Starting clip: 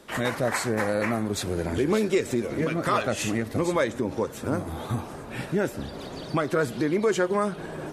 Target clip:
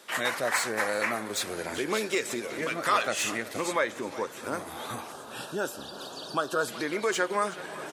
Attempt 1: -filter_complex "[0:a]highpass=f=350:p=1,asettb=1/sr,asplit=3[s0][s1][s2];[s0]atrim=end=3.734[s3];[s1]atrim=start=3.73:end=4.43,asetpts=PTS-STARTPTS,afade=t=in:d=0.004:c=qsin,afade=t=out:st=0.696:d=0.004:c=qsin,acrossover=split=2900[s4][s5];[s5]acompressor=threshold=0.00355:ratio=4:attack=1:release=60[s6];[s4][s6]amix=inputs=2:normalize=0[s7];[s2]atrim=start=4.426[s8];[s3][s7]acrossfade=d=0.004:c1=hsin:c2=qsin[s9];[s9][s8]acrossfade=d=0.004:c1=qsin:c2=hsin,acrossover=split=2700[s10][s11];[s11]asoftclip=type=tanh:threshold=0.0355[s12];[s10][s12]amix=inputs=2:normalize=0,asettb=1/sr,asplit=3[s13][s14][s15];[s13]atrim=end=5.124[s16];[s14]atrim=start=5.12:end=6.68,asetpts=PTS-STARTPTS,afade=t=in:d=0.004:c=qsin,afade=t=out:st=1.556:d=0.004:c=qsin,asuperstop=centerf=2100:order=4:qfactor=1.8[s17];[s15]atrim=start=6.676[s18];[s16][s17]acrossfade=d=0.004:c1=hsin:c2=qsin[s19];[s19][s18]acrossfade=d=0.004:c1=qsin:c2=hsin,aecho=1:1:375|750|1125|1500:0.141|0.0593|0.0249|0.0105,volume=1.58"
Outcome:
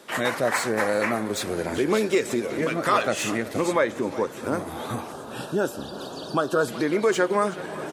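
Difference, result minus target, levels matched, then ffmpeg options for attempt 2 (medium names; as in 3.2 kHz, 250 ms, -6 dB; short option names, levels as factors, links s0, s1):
250 Hz band +4.5 dB
-filter_complex "[0:a]highpass=f=1300:p=1,asettb=1/sr,asplit=3[s0][s1][s2];[s0]atrim=end=3.734[s3];[s1]atrim=start=3.73:end=4.43,asetpts=PTS-STARTPTS,afade=t=in:d=0.004:c=qsin,afade=t=out:st=0.696:d=0.004:c=qsin,acrossover=split=2900[s4][s5];[s5]acompressor=threshold=0.00355:ratio=4:attack=1:release=60[s6];[s4][s6]amix=inputs=2:normalize=0[s7];[s2]atrim=start=4.426[s8];[s3][s7]acrossfade=d=0.004:c1=hsin:c2=qsin[s9];[s9][s8]acrossfade=d=0.004:c1=qsin:c2=hsin,acrossover=split=2700[s10][s11];[s11]asoftclip=type=tanh:threshold=0.0355[s12];[s10][s12]amix=inputs=2:normalize=0,asettb=1/sr,asplit=3[s13][s14][s15];[s13]atrim=end=5.124[s16];[s14]atrim=start=5.12:end=6.68,asetpts=PTS-STARTPTS,afade=t=in:d=0.004:c=qsin,afade=t=out:st=1.556:d=0.004:c=qsin,asuperstop=centerf=2100:order=4:qfactor=1.8[s17];[s15]atrim=start=6.676[s18];[s16][s17]acrossfade=d=0.004:c1=hsin:c2=qsin[s19];[s19][s18]acrossfade=d=0.004:c1=qsin:c2=hsin,aecho=1:1:375|750|1125|1500:0.141|0.0593|0.0249|0.0105,volume=1.58"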